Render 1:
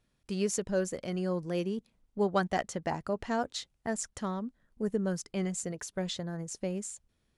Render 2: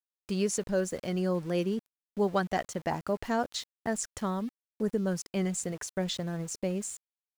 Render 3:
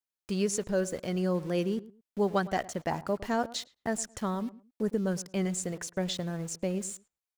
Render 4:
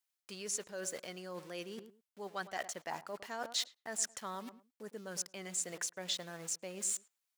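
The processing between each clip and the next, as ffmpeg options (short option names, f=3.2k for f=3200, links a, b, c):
-filter_complex "[0:a]asplit=2[a][b];[b]alimiter=limit=-23.5dB:level=0:latency=1:release=419,volume=1dB[c];[a][c]amix=inputs=2:normalize=0,aeval=exprs='val(0)*gte(abs(val(0)),0.0075)':c=same,volume=-3.5dB"
-filter_complex "[0:a]asplit=2[a][b];[b]adelay=109,lowpass=f=1.3k:p=1,volume=-17dB,asplit=2[c][d];[d]adelay=109,lowpass=f=1.3k:p=1,volume=0.24[e];[a][c][e]amix=inputs=3:normalize=0"
-af "areverse,acompressor=threshold=-37dB:ratio=10,areverse,highpass=f=1.3k:p=1,volume=6.5dB"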